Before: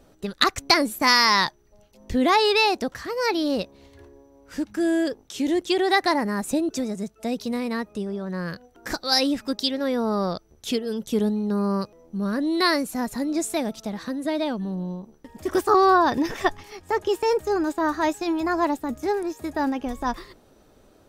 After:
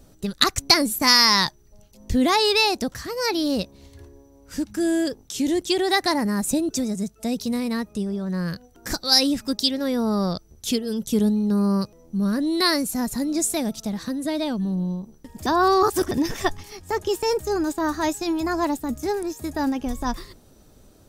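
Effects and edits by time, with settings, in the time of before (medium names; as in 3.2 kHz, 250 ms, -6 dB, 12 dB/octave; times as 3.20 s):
15.46–16.11 s: reverse
whole clip: tone controls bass +9 dB, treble +10 dB; trim -2 dB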